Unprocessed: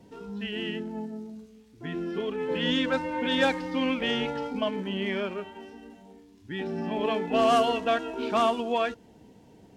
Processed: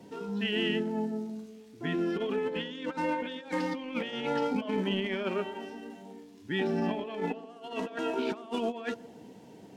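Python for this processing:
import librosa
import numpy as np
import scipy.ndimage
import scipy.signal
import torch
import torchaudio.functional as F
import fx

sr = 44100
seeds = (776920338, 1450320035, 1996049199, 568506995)

p1 = scipy.signal.sosfilt(scipy.signal.butter(2, 150.0, 'highpass', fs=sr, output='sos'), x)
p2 = fx.over_compress(p1, sr, threshold_db=-32.0, ratio=-0.5)
y = p2 + fx.echo_wet_bandpass(p2, sr, ms=126, feedback_pct=50, hz=410.0, wet_db=-14.5, dry=0)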